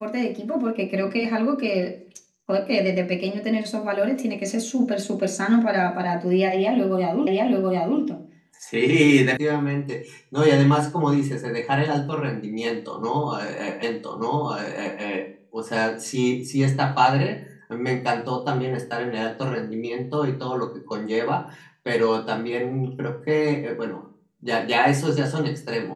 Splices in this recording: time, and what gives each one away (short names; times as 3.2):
7.27 repeat of the last 0.73 s
9.37 sound cut off
13.83 repeat of the last 1.18 s